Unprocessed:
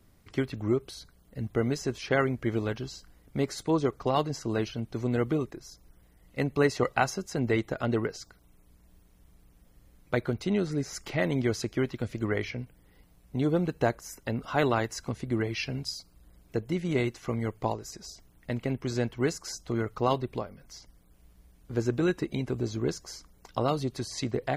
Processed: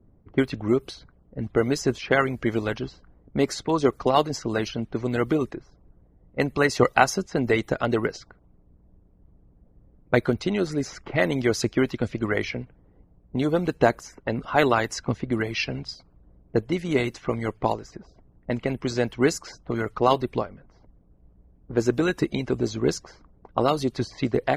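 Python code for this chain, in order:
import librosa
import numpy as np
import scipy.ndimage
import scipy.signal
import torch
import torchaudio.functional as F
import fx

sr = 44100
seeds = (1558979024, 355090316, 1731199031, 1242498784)

y = fx.env_lowpass(x, sr, base_hz=560.0, full_db=-25.0)
y = fx.hpss(y, sr, part='harmonic', gain_db=-8)
y = F.gain(torch.from_numpy(y), 8.0).numpy()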